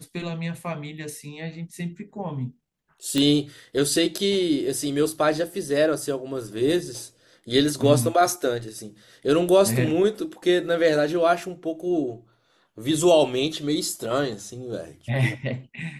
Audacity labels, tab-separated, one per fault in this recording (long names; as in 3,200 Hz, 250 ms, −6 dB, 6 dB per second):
3.180000	3.180000	click −10 dBFS